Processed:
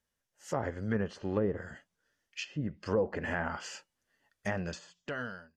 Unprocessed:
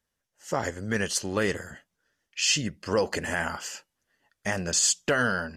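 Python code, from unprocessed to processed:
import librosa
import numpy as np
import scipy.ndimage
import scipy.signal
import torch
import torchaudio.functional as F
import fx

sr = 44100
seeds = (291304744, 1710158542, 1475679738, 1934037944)

y = fx.fade_out_tail(x, sr, length_s=1.22)
y = fx.env_lowpass_down(y, sr, base_hz=630.0, full_db=-21.5)
y = fx.hpss(y, sr, part='harmonic', gain_db=5)
y = y * 10.0 ** (-6.0 / 20.0)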